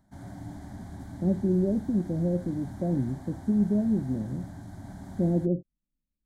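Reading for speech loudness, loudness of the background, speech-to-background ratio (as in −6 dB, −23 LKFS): −28.5 LKFS, −43.0 LKFS, 14.5 dB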